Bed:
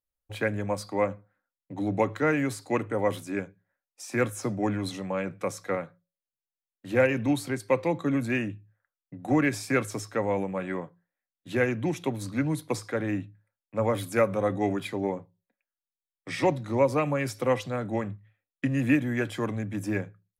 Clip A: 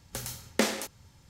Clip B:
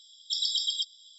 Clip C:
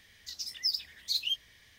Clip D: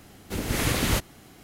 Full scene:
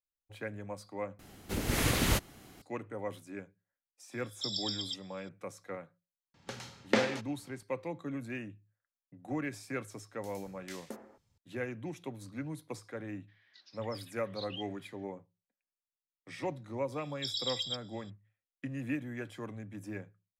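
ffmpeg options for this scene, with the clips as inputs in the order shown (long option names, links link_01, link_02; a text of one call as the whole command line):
ffmpeg -i bed.wav -i cue0.wav -i cue1.wav -i cue2.wav -i cue3.wav -filter_complex "[2:a]asplit=2[link_01][link_02];[1:a]asplit=2[link_03][link_04];[0:a]volume=-12.5dB[link_05];[link_01]aecho=1:1:1.7:0.55[link_06];[link_03]highpass=160,lowpass=3800[link_07];[link_04]acrossover=split=1500[link_08][link_09];[link_08]adelay=220[link_10];[link_10][link_09]amix=inputs=2:normalize=0[link_11];[3:a]highpass=340,equalizer=frequency=460:width_type=q:width=4:gain=-7,equalizer=frequency=1600:width_type=q:width=4:gain=6,equalizer=frequency=3000:width_type=q:width=4:gain=-4,lowpass=frequency=3600:width=0.5412,lowpass=frequency=3600:width=1.3066[link_12];[link_02]highshelf=frequency=5000:gain=-9[link_13];[link_05]asplit=2[link_14][link_15];[link_14]atrim=end=1.194[link_16];[4:a]atrim=end=1.43,asetpts=PTS-STARTPTS,volume=-4dB[link_17];[link_15]atrim=start=2.616[link_18];[link_06]atrim=end=1.18,asetpts=PTS-STARTPTS,volume=-8dB,afade=type=in:duration=0.004:curve=hsin,afade=type=out:start_time=1.176:duration=0.004:curve=hsin,adelay=4110[link_19];[link_07]atrim=end=1.29,asetpts=PTS-STARTPTS,volume=-1dB,afade=type=in:duration=0.004:curve=hsin,afade=type=out:start_time=1.286:duration=0.004:curve=hsin,adelay=279594S[link_20];[link_11]atrim=end=1.29,asetpts=PTS-STARTPTS,volume=-18dB,afade=type=in:duration=0.004:curve=hsin,afade=type=out:start_time=1.286:duration=0.004:curve=hsin,adelay=10090[link_21];[link_12]atrim=end=1.78,asetpts=PTS-STARTPTS,volume=-8.5dB,afade=type=in:duration=0.02,afade=type=out:start_time=1.76:duration=0.02,adelay=13270[link_22];[link_13]atrim=end=1.18,asetpts=PTS-STARTPTS,volume=-4dB,afade=type=in:duration=0.004:curve=hsin,afade=type=out:start_time=1.176:duration=0.004:curve=hsin,adelay=16920[link_23];[link_16][link_17]acrossfade=duration=0.004:curve1=hsin:curve2=hsin[link_24];[link_24][link_18]acrossfade=duration=0.004:curve1=hsin:curve2=hsin[link_25];[link_25][link_19][link_20][link_21][link_22][link_23]amix=inputs=6:normalize=0" out.wav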